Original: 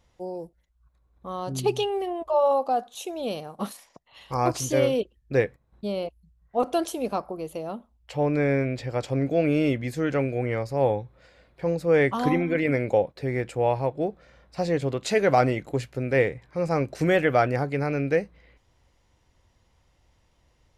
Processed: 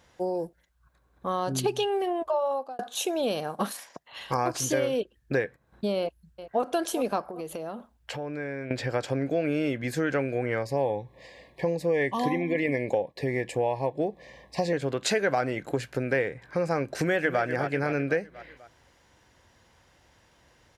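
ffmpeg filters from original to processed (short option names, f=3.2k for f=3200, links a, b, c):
-filter_complex "[0:a]asplit=2[a][b];[b]afade=t=in:st=5.99:d=0.01,afade=t=out:st=6.63:d=0.01,aecho=0:1:390|780|1170|1560:0.133352|0.0666761|0.033338|0.016669[c];[a][c]amix=inputs=2:normalize=0,asettb=1/sr,asplit=3[d][e][f];[d]atrim=end=7.254[g];[e]atrim=start=7.25:end=8.71,asetpts=PTS-STARTPTS,afade=t=in:d=0.004:c=qsin,afade=t=out:st=1.456:d=0.004:c=qsin,acompressor=threshold=-39dB:ratio=6:attack=3.2:release=140:knee=1:detection=peak[h];[f]atrim=start=8.706[i];[g][h]acrossfade=d=0.004:c1=hsin:c2=qsin[j];[j][i]acrossfade=d=0.004:c1=qsin:c2=hsin,asettb=1/sr,asplit=3[k][l][m];[k]atrim=end=10.654[n];[l]atrim=start=10.65:end=14.73,asetpts=PTS-STARTPTS,afade=t=in:d=0.004:c=qsin,afade=t=out:st=4.076:d=0.004:c=qsin,asuperstop=centerf=1400:order=20:qfactor=2.7[o];[m]atrim=start=14.726[p];[n][o]acrossfade=d=0.004:c1=hsin:c2=qsin[q];[q][p]acrossfade=d=0.004:c1=qsin:c2=hsin,asplit=2[r][s];[s]afade=t=in:st=16.95:d=0.01,afade=t=out:st=17.42:d=0.01,aecho=0:1:250|500|750|1000|1250:0.281838|0.126827|0.0570723|0.0256825|0.0115571[t];[r][t]amix=inputs=2:normalize=0,asplit=2[u][v];[u]atrim=end=2.79,asetpts=PTS-STARTPTS,afade=t=out:st=1.91:d=0.88[w];[v]atrim=start=2.79,asetpts=PTS-STARTPTS,afade=t=in:d=0.004:c=hsin[x];[w][x]concat=n=2:v=0:a=1,acompressor=threshold=-31dB:ratio=5,highpass=f=180:p=1,equalizer=f=1.6k:w=6.3:g=9,volume=7.5dB"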